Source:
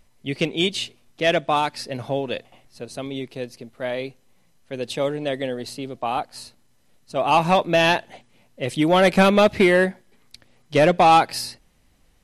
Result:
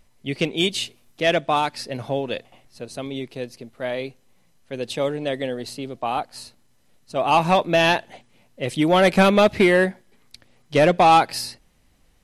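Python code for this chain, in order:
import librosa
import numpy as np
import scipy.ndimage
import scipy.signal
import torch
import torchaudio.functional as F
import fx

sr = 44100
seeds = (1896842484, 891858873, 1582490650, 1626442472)

y = fx.high_shelf(x, sr, hz=11000.0, db=10.5, at=(0.55, 1.22))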